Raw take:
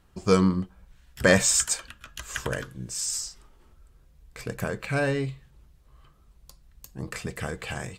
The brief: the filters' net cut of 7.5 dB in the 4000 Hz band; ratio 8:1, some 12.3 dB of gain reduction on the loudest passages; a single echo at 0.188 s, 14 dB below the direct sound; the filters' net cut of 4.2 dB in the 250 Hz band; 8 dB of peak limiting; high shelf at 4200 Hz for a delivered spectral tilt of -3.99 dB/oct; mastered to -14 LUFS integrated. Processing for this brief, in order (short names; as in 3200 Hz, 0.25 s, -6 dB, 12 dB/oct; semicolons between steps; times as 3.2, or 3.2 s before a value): bell 250 Hz -6.5 dB; bell 4000 Hz -7.5 dB; high shelf 4200 Hz -4.5 dB; compressor 8:1, threshold -29 dBFS; limiter -26 dBFS; echo 0.188 s -14 dB; gain +24 dB